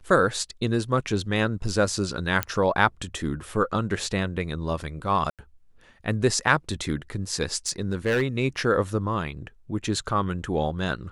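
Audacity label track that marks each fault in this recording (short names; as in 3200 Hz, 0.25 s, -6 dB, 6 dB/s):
2.430000	2.430000	pop -7 dBFS
5.300000	5.390000	gap 87 ms
7.670000	8.230000	clipped -18.5 dBFS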